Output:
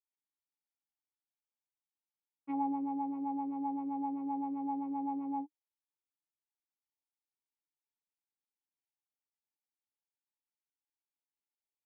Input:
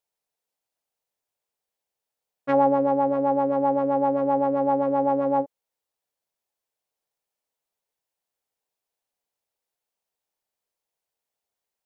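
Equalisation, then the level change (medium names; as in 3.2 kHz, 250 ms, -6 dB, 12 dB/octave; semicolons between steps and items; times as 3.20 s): vowel filter u; -5.5 dB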